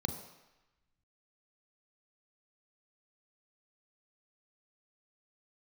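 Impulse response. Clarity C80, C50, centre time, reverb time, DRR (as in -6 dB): 10.0 dB, 8.0 dB, 21 ms, 1.0 s, 6.0 dB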